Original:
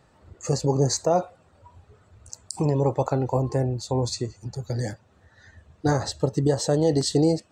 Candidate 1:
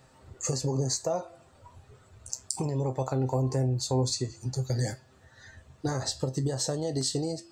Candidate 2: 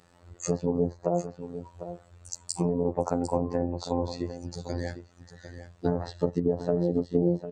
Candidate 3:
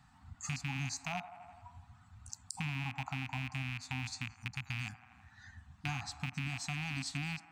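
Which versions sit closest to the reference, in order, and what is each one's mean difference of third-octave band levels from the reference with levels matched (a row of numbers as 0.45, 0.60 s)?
1, 2, 3; 4.0, 7.5, 12.0 dB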